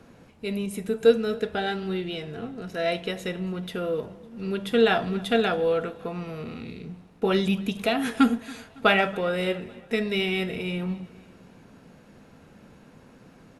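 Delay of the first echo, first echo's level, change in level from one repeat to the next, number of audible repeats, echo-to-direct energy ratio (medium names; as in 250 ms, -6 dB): 278 ms, -23.5 dB, -5.5 dB, 3, -22.0 dB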